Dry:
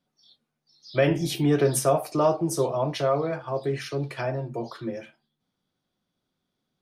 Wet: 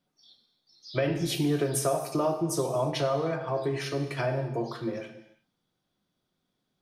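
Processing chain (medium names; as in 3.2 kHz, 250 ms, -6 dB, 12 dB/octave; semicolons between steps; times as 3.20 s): compression, threshold -24 dBFS, peak gain reduction 8.5 dB; gated-style reverb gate 370 ms falling, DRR 6.5 dB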